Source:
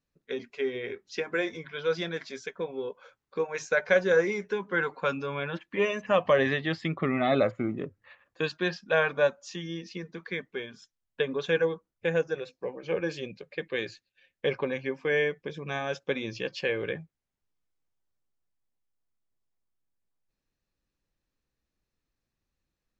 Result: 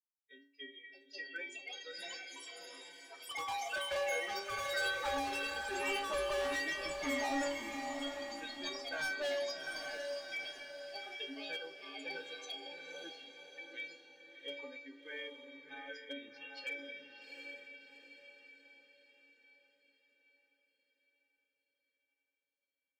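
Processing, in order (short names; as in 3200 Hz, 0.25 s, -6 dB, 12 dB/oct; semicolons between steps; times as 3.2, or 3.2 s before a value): per-bin expansion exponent 2; HPF 150 Hz 24 dB/oct; notches 50/100/150/200/250/300/350/400/450/500 Hz; in parallel at -1 dB: level quantiser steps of 12 dB; on the sum: metallic resonator 280 Hz, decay 0.53 s, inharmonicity 0.008; overdrive pedal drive 16 dB, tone 3800 Hz, clips at -22 dBFS; hard clip -38 dBFS, distortion -5 dB; diffused feedback echo 0.739 s, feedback 47%, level -5 dB; echoes that change speed 0.715 s, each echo +6 st, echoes 2; gain +3 dB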